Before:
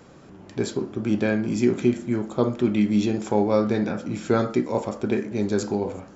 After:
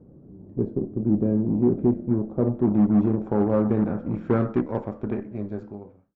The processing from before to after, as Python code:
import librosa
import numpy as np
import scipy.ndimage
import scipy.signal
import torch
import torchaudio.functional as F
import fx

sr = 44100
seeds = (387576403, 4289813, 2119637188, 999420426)

y = fx.fade_out_tail(x, sr, length_s=1.75)
y = fx.low_shelf(y, sr, hz=380.0, db=11.5)
y = fx.cheby_harmonics(y, sr, harmonics=(3, 6), levels_db=(-24, -23), full_scale_db=-8.0)
y = fx.filter_sweep_lowpass(y, sr, from_hz=450.0, to_hz=1800.0, start_s=1.12, end_s=4.79, q=0.93)
y = F.gain(torch.from_numpy(y), -6.0).numpy()